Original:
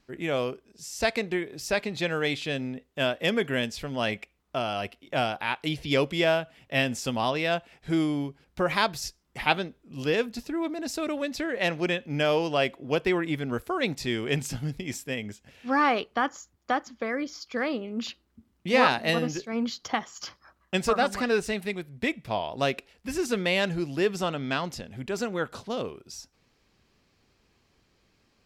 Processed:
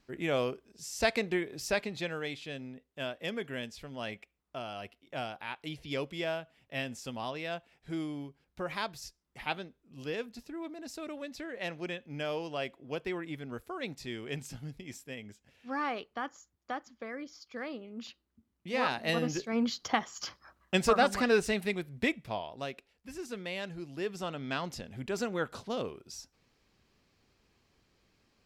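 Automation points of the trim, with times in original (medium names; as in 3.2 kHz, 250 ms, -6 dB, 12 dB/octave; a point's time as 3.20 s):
1.63 s -2.5 dB
2.32 s -11 dB
18.74 s -11 dB
19.40 s -1 dB
22.02 s -1 dB
22.67 s -13 dB
23.74 s -13 dB
24.85 s -3.5 dB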